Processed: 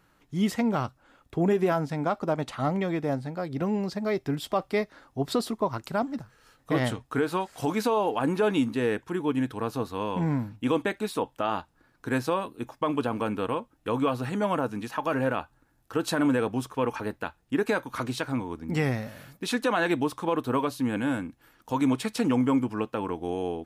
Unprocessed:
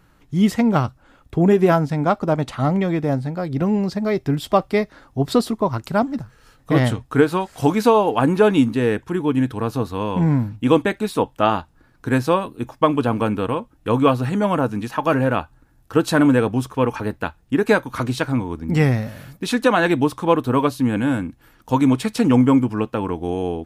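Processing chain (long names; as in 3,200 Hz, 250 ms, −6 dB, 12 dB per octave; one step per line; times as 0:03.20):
low-shelf EQ 170 Hz −9.5 dB
brickwall limiter −10.5 dBFS, peak gain reduction 7 dB
level −5 dB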